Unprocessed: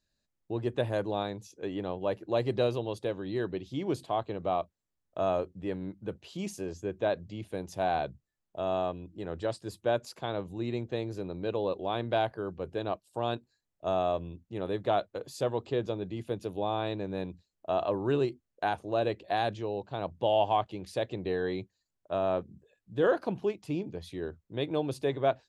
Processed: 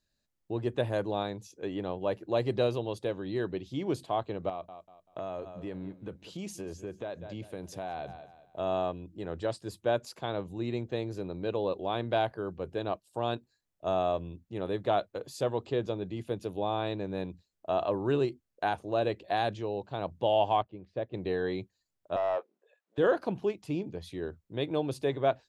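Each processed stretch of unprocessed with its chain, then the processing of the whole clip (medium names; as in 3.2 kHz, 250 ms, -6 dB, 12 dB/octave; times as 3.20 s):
4.49–8.59 s: feedback delay 193 ms, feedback 33%, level -18 dB + compression 5:1, threshold -34 dBFS
20.62–21.14 s: tape spacing loss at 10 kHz 38 dB + band-stop 850 Hz, Q 10 + upward expansion, over -45 dBFS
22.16–22.98 s: high-pass 500 Hz 24 dB/octave + overdrive pedal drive 13 dB, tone 1.1 kHz, clips at -21.5 dBFS
whole clip: none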